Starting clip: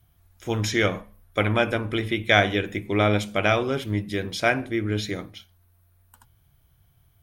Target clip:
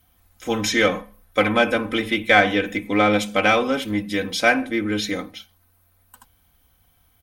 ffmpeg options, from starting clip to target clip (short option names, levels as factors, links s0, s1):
-filter_complex "[0:a]lowshelf=f=150:g=-8.5,aecho=1:1:3.9:0.81,asettb=1/sr,asplit=3[s0][s1][s2];[s0]atrim=end=2.234[s3];[s1]atrim=start=2.23:end=3.13,asetpts=PTS-STARTPTS,afade=t=in:d=0.004:c=qsin,afade=t=out:st=0.896:d=0.004:c=qsin,acrossover=split=3400[s4][s5];[s5]acompressor=threshold=0.01:ratio=4:attack=1:release=60[s6];[s4][s6]amix=inputs=2:normalize=0[s7];[s2]atrim=start=3.126[s8];[s3][s7]acrossfade=d=0.004:c1=hsin:c2=qsin[s9];[s9][s8]acrossfade=d=0.004:c1=qsin:c2=hsin,asplit=2[s10][s11];[s11]asoftclip=type=tanh:threshold=0.0944,volume=0.447[s12];[s10][s12]amix=inputs=2:normalize=0,volume=1.12"